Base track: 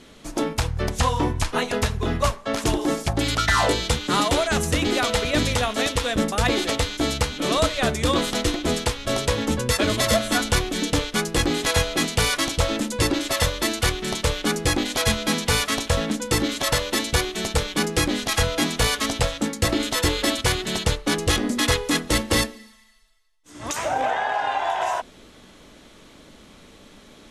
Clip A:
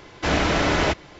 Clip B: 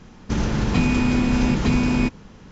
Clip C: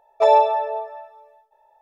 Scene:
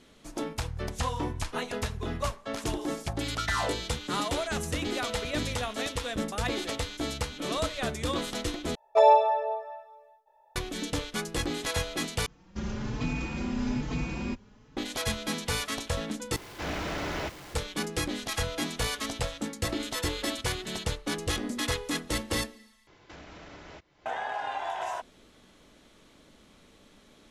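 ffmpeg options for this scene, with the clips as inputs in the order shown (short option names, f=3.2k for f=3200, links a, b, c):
-filter_complex "[1:a]asplit=2[a][b];[0:a]volume=-9.5dB[c];[2:a]asplit=2[d][e];[e]adelay=4.1,afreqshift=1.2[f];[d][f]amix=inputs=2:normalize=1[g];[a]aeval=exprs='val(0)+0.5*0.0422*sgn(val(0))':c=same[h];[b]acompressor=threshold=-28dB:ratio=6:attack=0.25:release=603:knee=1:detection=peak[i];[c]asplit=5[j][k][l][m][n];[j]atrim=end=8.754[o];[3:a]atrim=end=1.81,asetpts=PTS-STARTPTS,volume=-4dB[p];[k]atrim=start=10.556:end=12.264[q];[g]atrim=end=2.51,asetpts=PTS-STARTPTS,volume=-9dB[r];[l]atrim=start=14.766:end=16.364[s];[h]atrim=end=1.19,asetpts=PTS-STARTPTS,volume=-14dB[t];[m]atrim=start=17.546:end=22.874[u];[i]atrim=end=1.19,asetpts=PTS-STARTPTS,volume=-13dB[v];[n]atrim=start=24.056[w];[o][p]acrossfade=d=0.004:c1=hsin:c2=hsin[x];[x][q]acrossfade=d=0.004:c1=hsin:c2=hsin[y];[y][r]acrossfade=d=0.004:c1=hsin:c2=hsin[z];[z][s]acrossfade=d=0.004:c1=hsin:c2=hsin[aa];[aa][t]acrossfade=d=0.004:c1=hsin:c2=hsin[ab];[ab][u]acrossfade=d=0.004:c1=hsin:c2=hsin[ac];[ac][v]acrossfade=d=0.004:c1=hsin:c2=hsin[ad];[ad][w]acrossfade=d=0.004:c1=hsin:c2=hsin"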